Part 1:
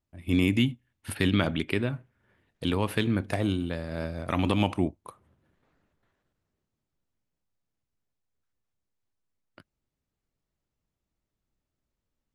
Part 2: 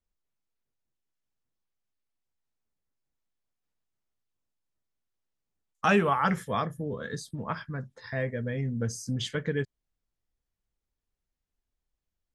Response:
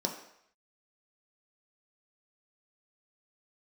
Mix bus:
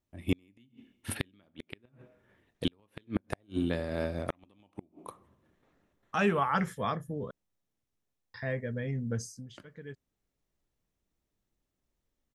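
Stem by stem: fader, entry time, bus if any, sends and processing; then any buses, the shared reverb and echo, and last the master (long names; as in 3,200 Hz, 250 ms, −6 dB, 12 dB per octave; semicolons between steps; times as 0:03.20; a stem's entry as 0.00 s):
−0.5 dB, 0.00 s, send −18 dB, notch filter 1,500 Hz, Q 21
−3.0 dB, 0.30 s, muted 0:07.31–0:08.34, no send, automatic ducking −20 dB, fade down 0.35 s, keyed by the first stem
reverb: on, RT60 0.70 s, pre-delay 3 ms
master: gate with flip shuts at −15 dBFS, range −40 dB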